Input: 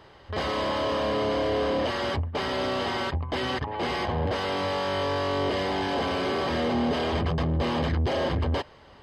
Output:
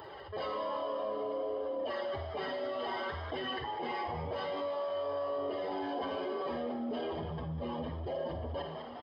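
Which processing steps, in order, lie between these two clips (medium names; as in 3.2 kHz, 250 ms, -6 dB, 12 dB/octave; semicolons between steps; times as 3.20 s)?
spectral contrast enhancement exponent 2.1; RIAA curve recording; in parallel at 0 dB: peak limiter -29.5 dBFS, peak gain reduction 10 dB; on the sum: Schroeder reverb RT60 0.67 s, DRR 8 dB; flange 0.59 Hz, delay 2.2 ms, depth 9.8 ms, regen -68%; on a send: frequency-shifting echo 200 ms, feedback 47%, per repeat +80 Hz, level -13 dB; on the sum: level flattener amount 50%; trim -8 dB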